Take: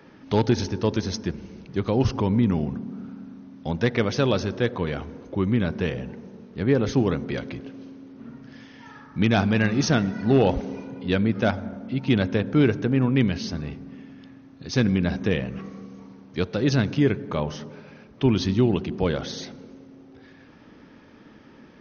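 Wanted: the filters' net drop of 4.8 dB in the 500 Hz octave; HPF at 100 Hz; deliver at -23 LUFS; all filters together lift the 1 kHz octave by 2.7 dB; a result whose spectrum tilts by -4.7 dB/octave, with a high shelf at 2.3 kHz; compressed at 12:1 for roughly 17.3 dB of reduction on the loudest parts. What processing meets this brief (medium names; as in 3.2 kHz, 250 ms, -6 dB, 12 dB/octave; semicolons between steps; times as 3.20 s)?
high-pass 100 Hz; peaking EQ 500 Hz -7.5 dB; peaking EQ 1 kHz +5.5 dB; treble shelf 2.3 kHz +4 dB; compression 12:1, threshold -34 dBFS; trim +17 dB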